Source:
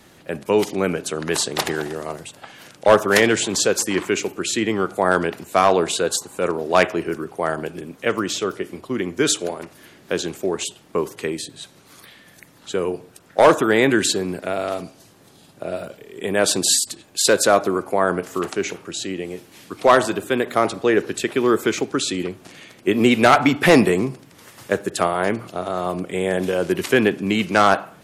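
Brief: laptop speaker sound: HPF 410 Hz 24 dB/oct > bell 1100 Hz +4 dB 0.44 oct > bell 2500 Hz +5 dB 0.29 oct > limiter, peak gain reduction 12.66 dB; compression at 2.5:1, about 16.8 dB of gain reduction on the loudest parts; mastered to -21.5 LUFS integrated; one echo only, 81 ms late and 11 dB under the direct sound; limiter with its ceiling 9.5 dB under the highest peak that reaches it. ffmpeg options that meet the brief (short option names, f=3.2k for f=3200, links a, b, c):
-af "acompressor=threshold=-35dB:ratio=2.5,alimiter=limit=-23.5dB:level=0:latency=1,highpass=f=410:w=0.5412,highpass=f=410:w=1.3066,equalizer=f=1.1k:t=o:w=0.44:g=4,equalizer=f=2.5k:t=o:w=0.29:g=5,aecho=1:1:81:0.282,volume=19dB,alimiter=limit=-11dB:level=0:latency=1"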